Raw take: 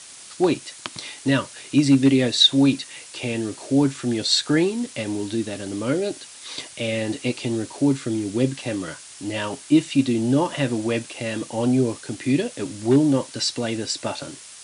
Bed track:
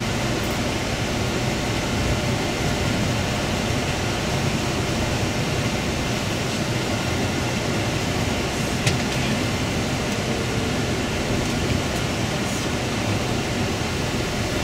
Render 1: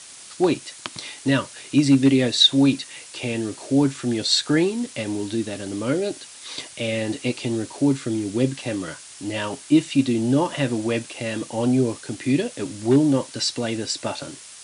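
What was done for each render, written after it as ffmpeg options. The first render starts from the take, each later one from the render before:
-af anull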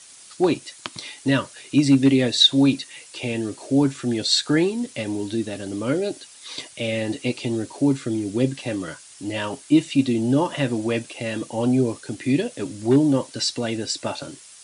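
-af "afftdn=nr=6:nf=-43"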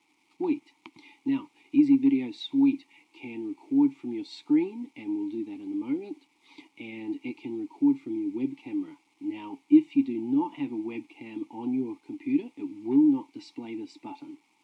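-filter_complex "[0:a]acrusher=bits=6:mix=0:aa=0.000001,asplit=3[a][b][c];[a]bandpass=f=300:t=q:w=8,volume=0dB[d];[b]bandpass=f=870:t=q:w=8,volume=-6dB[e];[c]bandpass=f=2.24k:t=q:w=8,volume=-9dB[f];[d][e][f]amix=inputs=3:normalize=0"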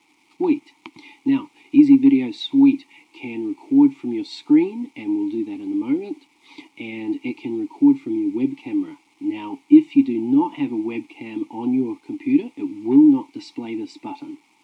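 -af "volume=8.5dB,alimiter=limit=-2dB:level=0:latency=1"

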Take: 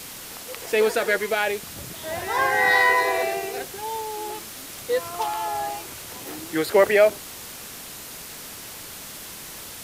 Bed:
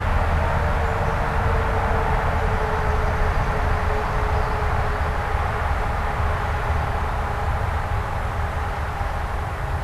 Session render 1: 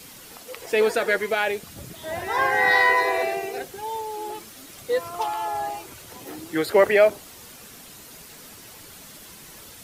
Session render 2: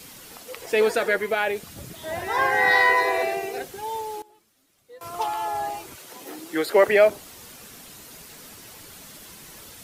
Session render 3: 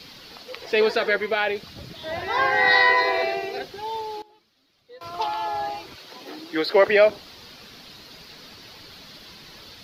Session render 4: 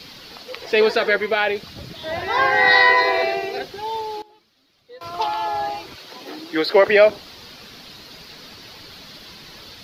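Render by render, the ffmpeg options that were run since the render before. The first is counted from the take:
-af "afftdn=nr=8:nf=-39"
-filter_complex "[0:a]asettb=1/sr,asplit=3[a][b][c];[a]atrim=end=1.084[d];[b]atrim=start=1.08:end=1.56,asetpts=PTS-STARTPTS,afade=t=in:d=0.004:c=qsin,afade=t=out:st=0.476:d=0.004:c=qsin,equalizer=f=5.9k:t=o:w=1.7:g=-5[e];[c]atrim=start=1.556[f];[d][e]acrossfade=d=0.004:c1=hsin:c2=qsin[g];[g][f]acrossfade=d=0.004:c1=qsin:c2=hsin,asettb=1/sr,asplit=3[h][i][j];[h]atrim=end=5.954[k];[i]atrim=start=5.95:end=6.88,asetpts=PTS-STARTPTS,afade=t=in:d=0.004:c=qsin,afade=t=out:st=0.926:d=0.004:c=qsin,highpass=240[l];[j]atrim=start=6.876[m];[k][l]acrossfade=d=0.004:c1=hsin:c2=qsin[n];[n][m]acrossfade=d=0.004:c1=qsin:c2=hsin,asplit=3[o][p][q];[o]atrim=end=4.22,asetpts=PTS-STARTPTS,afade=t=out:st=3.99:d=0.23:c=log:silence=0.0749894[r];[p]atrim=start=4.22:end=5.01,asetpts=PTS-STARTPTS,volume=-22.5dB[s];[q]atrim=start=5.01,asetpts=PTS-STARTPTS,afade=t=in:d=0.23:c=log:silence=0.0749894[t];[r][s][t]concat=n=3:v=0:a=1"
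-af "highshelf=f=6.1k:t=q:w=3:g=-11.5"
-af "volume=3.5dB,alimiter=limit=-3dB:level=0:latency=1"

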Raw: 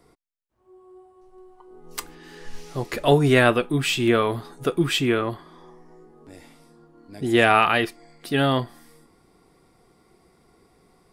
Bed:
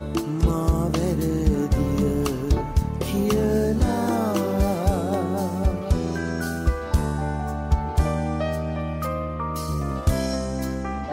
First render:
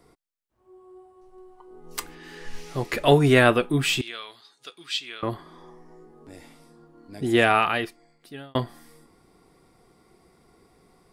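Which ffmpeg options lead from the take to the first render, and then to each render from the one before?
-filter_complex "[0:a]asettb=1/sr,asplit=3[a][b][c];[a]atrim=end=2.004[d];[b]atrim=start=2:end=3.26,asetpts=PTS-STARTPTS,afade=t=in:d=0.004:c=qsin,afade=t=out:st=1.256:d=0.004:c=qsin,equalizer=f=2.2k:t=o:w=1.1:g=4[e];[c]atrim=start=3.256[f];[d][e]acrossfade=d=0.004:c1=hsin:c2=qsin[g];[g][f]acrossfade=d=0.004:c1=qsin:c2=hsin,asettb=1/sr,asplit=3[h][i][j];[h]atrim=end=4.014[k];[i]atrim=start=4.01:end=5.23,asetpts=PTS-STARTPTS,afade=t=in:d=0.004:c=qsin,afade=t=out:st=1.216:d=0.004:c=qsin,bandpass=f=4.3k:t=q:w=1.9[l];[j]atrim=start=5.226[m];[k][l]acrossfade=d=0.004:c1=hsin:c2=qsin[n];[n][m]acrossfade=d=0.004:c1=qsin:c2=hsin,asplit=2[o][p];[o]atrim=end=8.55,asetpts=PTS-STARTPTS,afade=t=out:st=7.17:d=1.38[q];[p]atrim=start=8.55,asetpts=PTS-STARTPTS,afade=t=in:d=0.004:c=hsin[r];[q][r]concat=n=2:v=0:a=1"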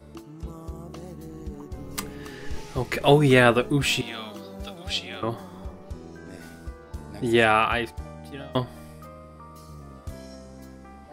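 -filter_complex "[1:a]volume=-17dB[a];[0:a][a]amix=inputs=2:normalize=0"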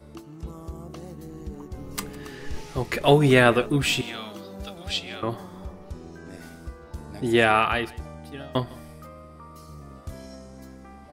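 -af "aecho=1:1:156:0.0841"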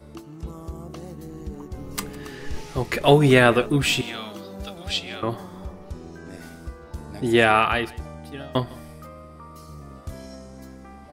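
-af "volume=2dB,alimiter=limit=-3dB:level=0:latency=1"

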